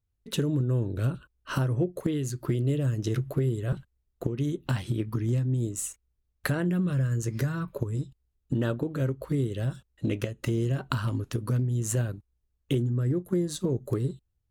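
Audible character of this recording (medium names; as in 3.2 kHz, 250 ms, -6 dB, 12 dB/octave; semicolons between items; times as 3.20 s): noise floor -77 dBFS; spectral tilt -6.5 dB/octave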